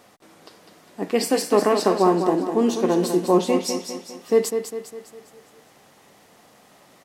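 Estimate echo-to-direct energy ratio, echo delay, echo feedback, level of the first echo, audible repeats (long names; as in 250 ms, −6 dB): −6.5 dB, 202 ms, 48%, −7.5 dB, 5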